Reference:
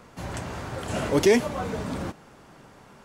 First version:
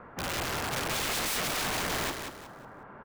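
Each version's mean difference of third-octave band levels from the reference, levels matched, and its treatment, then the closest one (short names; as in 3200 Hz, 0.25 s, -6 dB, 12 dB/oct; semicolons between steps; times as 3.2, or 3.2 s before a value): 10.5 dB: rattling part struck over -38 dBFS, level -21 dBFS; EQ curve 170 Hz 0 dB, 1600 Hz +7 dB, 5900 Hz -29 dB; wrapped overs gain 25.5 dB; on a send: feedback echo 0.183 s, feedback 30%, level -6.5 dB; on the sum: gain -1.5 dB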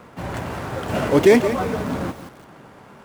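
2.0 dB: median filter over 9 samples; HPF 85 Hz 6 dB/oct; lo-fi delay 0.172 s, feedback 35%, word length 7-bit, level -11 dB; gain +6.5 dB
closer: second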